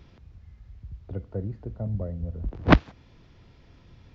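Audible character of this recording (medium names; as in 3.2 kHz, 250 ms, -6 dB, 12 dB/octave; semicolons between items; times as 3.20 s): noise floor -56 dBFS; spectral tilt -6.0 dB/octave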